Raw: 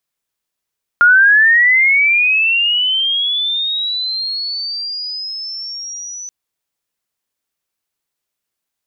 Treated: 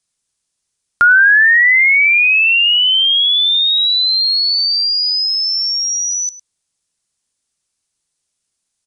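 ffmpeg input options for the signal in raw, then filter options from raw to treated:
-f lavfi -i "aevalsrc='pow(10,(-5-21*t/5.28)/20)*sin(2*PI*(1400*t+4600*t*t/(2*5.28)))':d=5.28:s=44100"
-af "bass=f=250:g=7,treble=f=4k:g=12,aecho=1:1:105:0.15,aresample=22050,aresample=44100"

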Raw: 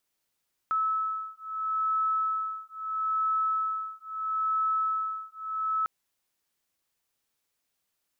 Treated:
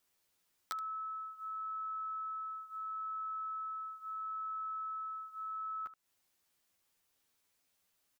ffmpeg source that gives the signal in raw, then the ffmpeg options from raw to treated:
-f lavfi -i "aevalsrc='0.0335*(sin(2*PI*1300*t)+sin(2*PI*1300.76*t))':d=5.15:s=44100"
-filter_complex "[0:a]acompressor=threshold=-41dB:ratio=5,aeval=exprs='(mod(25.1*val(0)+1,2)-1)/25.1':c=same,asplit=2[a][b];[b]aecho=0:1:11|78:0.668|0.178[c];[a][c]amix=inputs=2:normalize=0"

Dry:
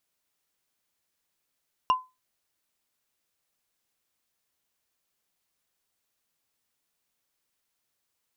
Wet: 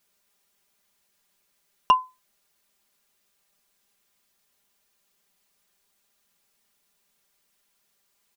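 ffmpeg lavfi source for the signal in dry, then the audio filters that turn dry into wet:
-f lavfi -i "aevalsrc='0.178*pow(10,-3*t/0.24)*sin(2*PI*1020*t)+0.0562*pow(10,-3*t/0.071)*sin(2*PI*2812.1*t)+0.0178*pow(10,-3*t/0.032)*sin(2*PI*5512.1*t)+0.00562*pow(10,-3*t/0.017)*sin(2*PI*9111.7*t)+0.00178*pow(10,-3*t/0.011)*sin(2*PI*13606.8*t)':d=0.45:s=44100"
-filter_complex "[0:a]aecho=1:1:5:0.83,asplit=2[a][b];[b]acompressor=threshold=-27dB:ratio=6,volume=0dB[c];[a][c]amix=inputs=2:normalize=0"

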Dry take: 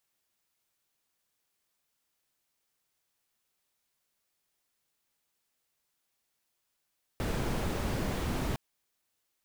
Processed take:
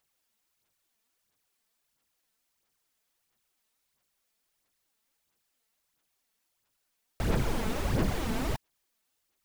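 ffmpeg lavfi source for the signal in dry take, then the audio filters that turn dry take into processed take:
-f lavfi -i "anoisesrc=c=brown:a=0.124:d=1.36:r=44100:seed=1"
-af "aphaser=in_gain=1:out_gain=1:delay=4.6:decay=0.54:speed=1.5:type=sinusoidal"

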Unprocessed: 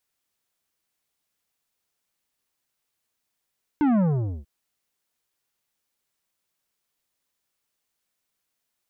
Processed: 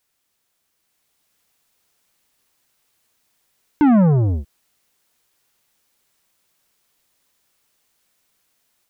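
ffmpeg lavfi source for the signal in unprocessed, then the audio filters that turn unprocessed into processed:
-f lavfi -i "aevalsrc='0.119*clip((0.64-t)/0.46,0,1)*tanh(3.55*sin(2*PI*310*0.64/log(65/310)*(exp(log(65/310)*t/0.64)-1)))/tanh(3.55)':d=0.64:s=44100"
-filter_complex "[0:a]asplit=2[a][b];[b]alimiter=level_in=6.5dB:limit=-24dB:level=0:latency=1,volume=-6.5dB,volume=2.5dB[c];[a][c]amix=inputs=2:normalize=0,dynaudnorm=f=680:g=3:m=5dB"

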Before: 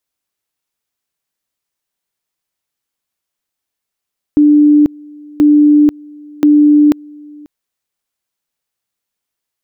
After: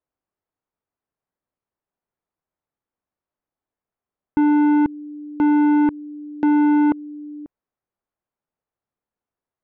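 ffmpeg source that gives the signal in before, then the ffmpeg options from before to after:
-f lavfi -i "aevalsrc='pow(10,(-4-27*gte(mod(t,1.03),0.49))/20)*sin(2*PI*296*t)':d=3.09:s=44100"
-af "lowpass=1.1k,aresample=16000,asoftclip=type=tanh:threshold=-14dB,aresample=44100"

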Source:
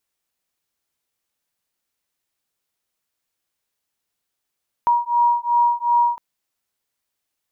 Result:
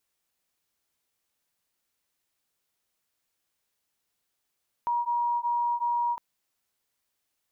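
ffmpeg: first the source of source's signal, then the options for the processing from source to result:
-f lavfi -i "aevalsrc='0.126*(sin(2*PI*952*t)+sin(2*PI*954.7*t))':d=1.31:s=44100"
-af "alimiter=limit=-23.5dB:level=0:latency=1:release=85"

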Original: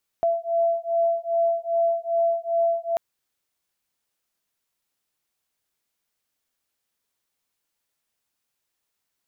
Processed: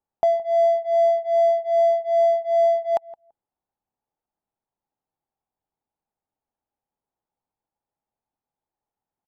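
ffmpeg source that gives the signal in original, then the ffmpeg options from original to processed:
-f lavfi -i "aevalsrc='0.0708*(sin(2*PI*672*t)+sin(2*PI*674.5*t))':d=2.74:s=44100"
-filter_complex "[0:a]adynamicsmooth=sensitivity=6:basefreq=880,equalizer=f=830:w=3.9:g=13,asplit=2[a][b];[b]adelay=168,lowpass=f=830:p=1,volume=-17dB,asplit=2[c][d];[d]adelay=168,lowpass=f=830:p=1,volume=0.16[e];[a][c][e]amix=inputs=3:normalize=0"

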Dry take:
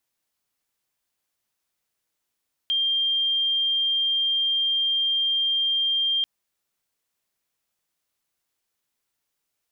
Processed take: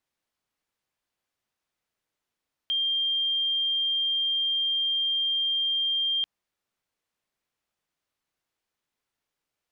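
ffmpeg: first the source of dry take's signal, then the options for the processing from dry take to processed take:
-f lavfi -i "sine=f=3190:d=3.54:r=44100,volume=-1.94dB"
-af "lowpass=f=3.1k:p=1"

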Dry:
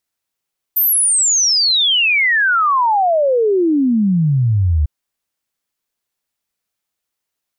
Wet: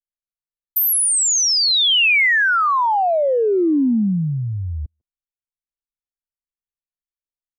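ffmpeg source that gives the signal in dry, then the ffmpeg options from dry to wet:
-f lavfi -i "aevalsrc='0.282*clip(min(t,4.1-t)/0.01,0,1)*sin(2*PI*14000*4.1/log(71/14000)*(exp(log(71/14000)*t/4.1)-1))':d=4.1:s=44100"
-filter_complex "[0:a]anlmdn=10,acrossover=split=210|2500[a][b][c];[a]acompressor=threshold=-27dB:ratio=4[d];[b]acompressor=threshold=-16dB:ratio=4[e];[c]acompressor=threshold=-16dB:ratio=4[f];[d][e][f]amix=inputs=3:normalize=0,asplit=2[g][h];[h]adelay=150,highpass=300,lowpass=3.4k,asoftclip=type=hard:threshold=-21.5dB,volume=-25dB[i];[g][i]amix=inputs=2:normalize=0"

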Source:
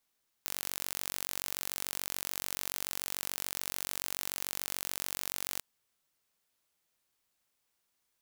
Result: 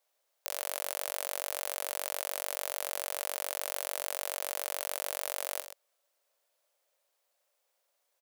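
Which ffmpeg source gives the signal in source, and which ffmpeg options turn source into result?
-f lavfi -i "aevalsrc='0.376*eq(mod(n,940),0)':d=5.14:s=44100"
-af "highpass=f=570:t=q:w=5.1,aecho=1:1:49|128:0.2|0.316"

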